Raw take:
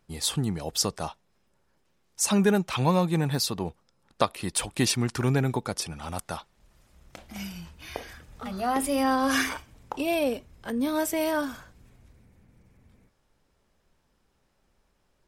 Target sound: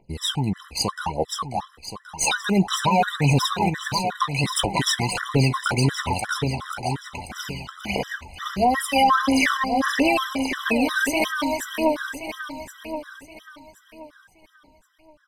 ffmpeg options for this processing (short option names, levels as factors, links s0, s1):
-filter_complex "[0:a]equalizer=f=1300:w=1.5:g=-2,acrossover=split=1200[s0][s1];[s1]dynaudnorm=f=140:g=17:m=2.11[s2];[s0][s2]amix=inputs=2:normalize=0,aphaser=in_gain=1:out_gain=1:delay=1.4:decay=0.77:speed=1.5:type=triangular,asplit=2[s3][s4];[s4]aeval=exprs='sgn(val(0))*max(abs(val(0))-0.015,0)':c=same,volume=0.562[s5];[s3][s5]amix=inputs=2:normalize=0,asplit=2[s6][s7];[s7]highpass=f=720:p=1,volume=3.98,asoftclip=type=tanh:threshold=0.944[s8];[s6][s8]amix=inputs=2:normalize=0,lowpass=f=1400:p=1,volume=0.501,asplit=2[s9][s10];[s10]adelay=15,volume=0.237[s11];[s9][s11]amix=inputs=2:normalize=0,aecho=1:1:537|1074|1611|2148|2685|3222|3759:0.501|0.266|0.141|0.0746|0.0395|0.021|0.0111,alimiter=level_in=2.82:limit=0.891:release=50:level=0:latency=1,afftfilt=real='re*gt(sin(2*PI*2.8*pts/sr)*(1-2*mod(floor(b*sr/1024/1000),2)),0)':imag='im*gt(sin(2*PI*2.8*pts/sr)*(1-2*mod(floor(b*sr/1024/1000),2)),0)':win_size=1024:overlap=0.75,volume=0.398"